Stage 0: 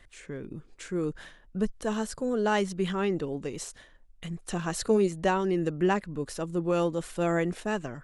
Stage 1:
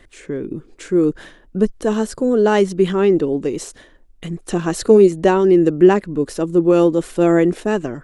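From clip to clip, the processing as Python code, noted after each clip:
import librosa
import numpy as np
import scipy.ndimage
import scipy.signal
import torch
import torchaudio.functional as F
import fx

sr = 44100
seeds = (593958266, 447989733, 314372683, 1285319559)

y = fx.peak_eq(x, sr, hz=340.0, db=10.0, octaves=1.2)
y = F.gain(torch.from_numpy(y), 6.5).numpy()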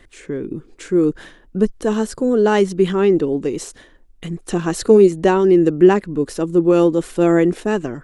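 y = fx.peak_eq(x, sr, hz=610.0, db=-3.0, octaves=0.3)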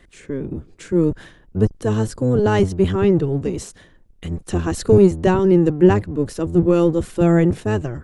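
y = fx.octave_divider(x, sr, octaves=1, level_db=2.0)
y = F.gain(torch.from_numpy(y), -3.0).numpy()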